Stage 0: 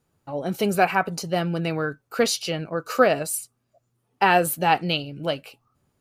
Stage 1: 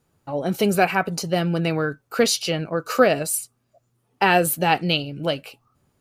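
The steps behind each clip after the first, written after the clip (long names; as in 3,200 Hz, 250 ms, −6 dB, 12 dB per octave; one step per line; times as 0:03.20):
dynamic equaliser 1,000 Hz, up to −5 dB, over −29 dBFS, Q 0.96
level +3.5 dB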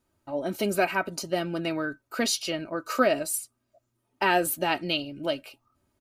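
comb filter 3.2 ms, depth 60%
level −6.5 dB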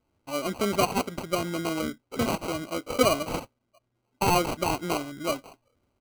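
decimation without filtering 25×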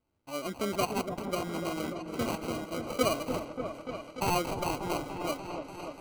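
echo whose low-pass opens from repeat to repeat 293 ms, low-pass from 750 Hz, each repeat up 1 octave, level −6 dB
level −6 dB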